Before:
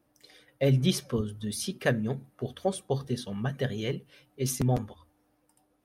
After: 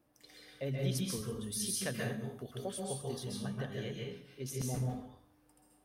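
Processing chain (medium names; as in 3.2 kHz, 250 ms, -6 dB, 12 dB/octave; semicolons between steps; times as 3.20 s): compression 1.5:1, threshold -54 dBFS, peak gain reduction 12.5 dB; 0.95–3.33 s: treble shelf 4.7 kHz +10.5 dB; plate-style reverb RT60 0.57 s, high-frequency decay 0.9×, pre-delay 120 ms, DRR -2 dB; trim -2.5 dB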